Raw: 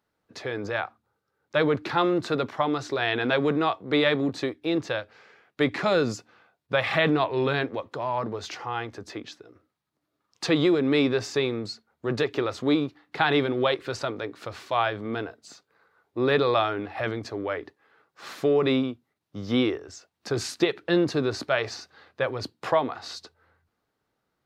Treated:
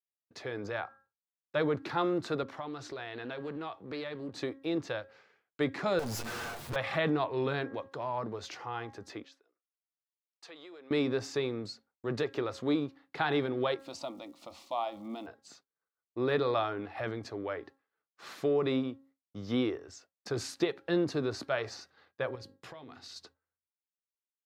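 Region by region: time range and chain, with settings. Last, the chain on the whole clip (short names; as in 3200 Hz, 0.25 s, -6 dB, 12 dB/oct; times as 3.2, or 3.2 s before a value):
2.43–4.36 compressor 2.5:1, threshold -33 dBFS + Doppler distortion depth 0.17 ms
5.99–6.76 minimum comb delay 8.5 ms + power-law curve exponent 0.35 + compressor, threshold -28 dBFS
9.24–10.91 HPF 520 Hz + compressor 2:1, threshold -54 dBFS
13.78–15.26 crackle 560/s -51 dBFS + fixed phaser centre 430 Hz, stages 6
22.35–23.16 bell 840 Hz -11 dB 2.4 oct + notches 50/100/150/200/250/300/350/400/450/500 Hz + compressor 8:1, threshold -37 dBFS
whole clip: de-hum 271.3 Hz, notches 7; expander -48 dBFS; dynamic EQ 2800 Hz, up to -4 dB, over -37 dBFS, Q 0.9; gain -6.5 dB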